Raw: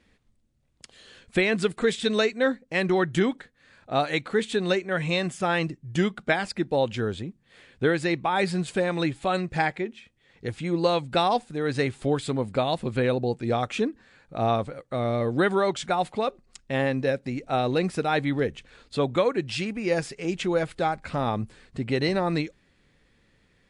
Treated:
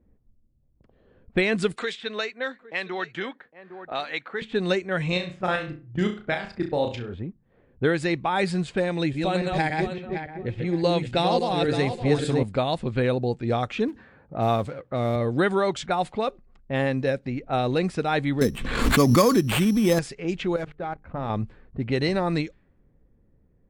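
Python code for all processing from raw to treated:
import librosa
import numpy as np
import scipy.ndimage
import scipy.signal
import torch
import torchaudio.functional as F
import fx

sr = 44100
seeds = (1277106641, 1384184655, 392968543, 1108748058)

y = fx.chain(x, sr, fx.highpass(hz=1300.0, slope=6),
    fx.echo_single(ms=808, db=-19.5),
    fx.band_squash(depth_pct=70), at=(1.76, 4.42))
y = fx.chain(y, sr, fx.level_steps(step_db=12),
    fx.room_flutter(wall_m=5.7, rt60_s=0.36), at=(5.12, 7.14))
y = fx.chain(y, sr, fx.reverse_delay_fb(ms=283, feedback_pct=49, wet_db=-3),
    fx.peak_eq(hz=1200.0, db=-7.0, octaves=0.67), at=(8.85, 12.43))
y = fx.chain(y, sr, fx.law_mismatch(coded='mu'),
    fx.highpass(hz=77.0, slope=12), at=(13.88, 15.16))
y = fx.chain(y, sr, fx.small_body(hz=(220.0, 1100.0), ring_ms=20, db=10),
    fx.sample_hold(seeds[0], rate_hz=5700.0, jitter_pct=0),
    fx.pre_swell(db_per_s=45.0), at=(18.41, 19.99))
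y = fx.chain(y, sr, fx.median_filter(points=9),
    fx.hum_notches(base_hz=50, count=9),
    fx.level_steps(step_db=15), at=(20.56, 21.3))
y = fx.env_lowpass(y, sr, base_hz=560.0, full_db=-21.0)
y = fx.low_shelf(y, sr, hz=83.0, db=8.0)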